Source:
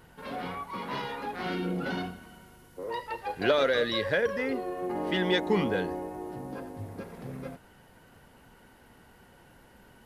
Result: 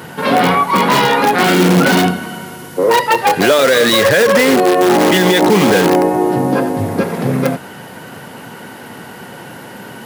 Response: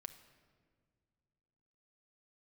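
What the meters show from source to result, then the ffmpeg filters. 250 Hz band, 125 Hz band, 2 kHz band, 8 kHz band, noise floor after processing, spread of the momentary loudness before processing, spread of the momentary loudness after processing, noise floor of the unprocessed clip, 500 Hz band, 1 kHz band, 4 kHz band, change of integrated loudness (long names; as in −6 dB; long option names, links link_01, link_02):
+20.0 dB, +19.5 dB, +18.5 dB, can't be measured, −33 dBFS, 16 LU, 9 LU, −57 dBFS, +18.0 dB, +22.0 dB, +18.5 dB, +19.0 dB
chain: -filter_complex "[0:a]asplit=2[link_01][link_02];[link_02]aeval=exprs='(mod(23.7*val(0)+1,2)-1)/23.7':channel_layout=same,volume=-5dB[link_03];[link_01][link_03]amix=inputs=2:normalize=0,highpass=frequency=120:width=0.5412,highpass=frequency=120:width=1.3066,alimiter=level_in=22dB:limit=-1dB:release=50:level=0:latency=1,volume=-1dB"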